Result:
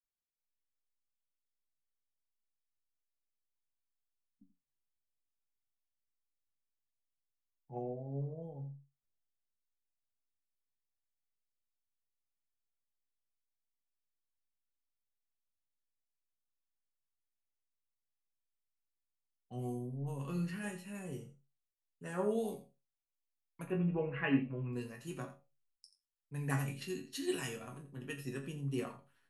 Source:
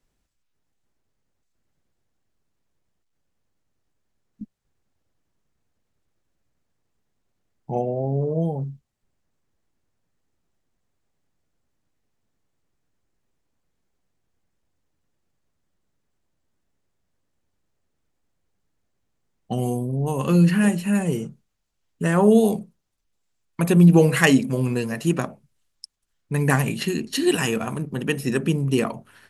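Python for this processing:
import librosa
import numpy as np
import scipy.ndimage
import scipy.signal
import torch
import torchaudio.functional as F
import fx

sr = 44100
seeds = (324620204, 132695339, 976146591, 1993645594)

y = fx.ellip_lowpass(x, sr, hz=2700.0, order=4, stop_db=60, at=(23.64, 24.73))
y = fx.resonator_bank(y, sr, root=42, chord='sus4', decay_s=0.24)
y = y + 10.0 ** (-12.0 / 20.0) * np.pad(y, (int(85 * sr / 1000.0), 0))[:len(y)]
y = fx.band_widen(y, sr, depth_pct=40)
y = F.gain(torch.from_numpy(y), -7.5).numpy()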